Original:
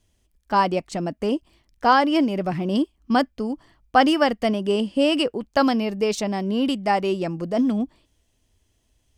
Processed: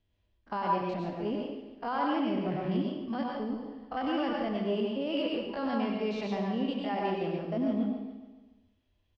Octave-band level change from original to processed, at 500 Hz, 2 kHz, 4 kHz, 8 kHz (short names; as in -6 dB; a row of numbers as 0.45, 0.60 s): -9.5 dB, -13.5 dB, -12.5 dB, under -25 dB